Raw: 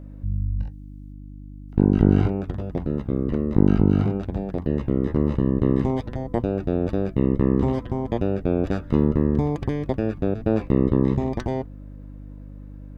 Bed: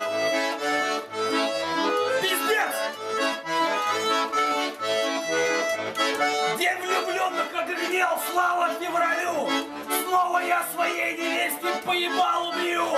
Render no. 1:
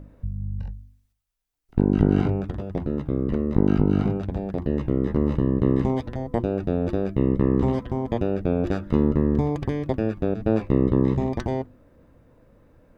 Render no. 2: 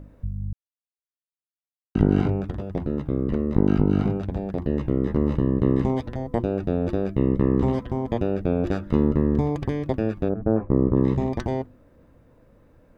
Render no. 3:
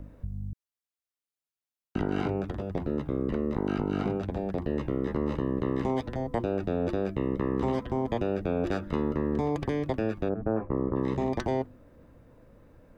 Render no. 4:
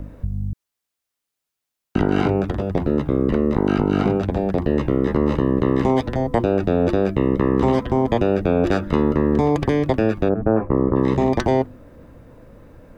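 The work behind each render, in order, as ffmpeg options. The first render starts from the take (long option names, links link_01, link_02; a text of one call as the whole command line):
ffmpeg -i in.wav -af "bandreject=frequency=50:width_type=h:width=4,bandreject=frequency=100:width_type=h:width=4,bandreject=frequency=150:width_type=h:width=4,bandreject=frequency=200:width_type=h:width=4,bandreject=frequency=250:width_type=h:width=4,bandreject=frequency=300:width_type=h:width=4,bandreject=frequency=350:width_type=h:width=4" out.wav
ffmpeg -i in.wav -filter_complex "[0:a]asplit=3[link_01][link_02][link_03];[link_01]afade=type=out:start_time=10.28:duration=0.02[link_04];[link_02]lowpass=frequency=1400:width=0.5412,lowpass=frequency=1400:width=1.3066,afade=type=in:start_time=10.28:duration=0.02,afade=type=out:start_time=10.95:duration=0.02[link_05];[link_03]afade=type=in:start_time=10.95:duration=0.02[link_06];[link_04][link_05][link_06]amix=inputs=3:normalize=0,asplit=3[link_07][link_08][link_09];[link_07]atrim=end=0.53,asetpts=PTS-STARTPTS,afade=type=out:start_time=0.526:duration=0.004:curve=hsin[link_10];[link_08]atrim=start=0.53:end=1.95,asetpts=PTS-STARTPTS,volume=0[link_11];[link_09]atrim=start=1.95,asetpts=PTS-STARTPTS,afade=type=in:duration=0.004:curve=hsin[link_12];[link_10][link_11][link_12]concat=n=3:v=0:a=1" out.wav
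ffmpeg -i in.wav -filter_complex "[0:a]acrossover=split=270|700[link_01][link_02][link_03];[link_01]acompressor=threshold=-33dB:ratio=4[link_04];[link_02]alimiter=limit=-23dB:level=0:latency=1[link_05];[link_04][link_05][link_03]amix=inputs=3:normalize=0" out.wav
ffmpeg -i in.wav -af "volume=10.5dB" out.wav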